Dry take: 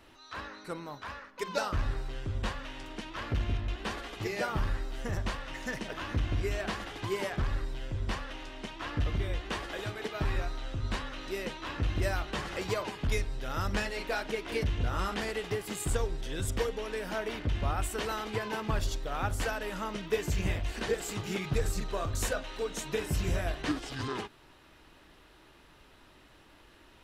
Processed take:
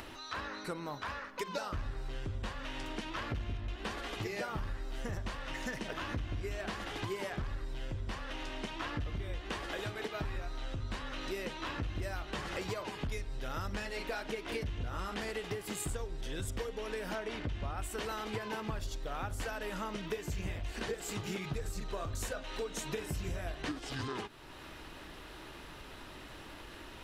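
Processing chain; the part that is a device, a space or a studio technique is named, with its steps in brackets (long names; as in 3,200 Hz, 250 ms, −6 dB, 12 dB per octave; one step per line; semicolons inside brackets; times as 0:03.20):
0:17.15–0:17.78: low-pass filter 9,600 Hz 12 dB per octave
upward and downward compression (upward compression, threshold −47 dBFS; downward compressor 5 to 1, threshold −41 dBFS, peak gain reduction 15.5 dB)
level +5 dB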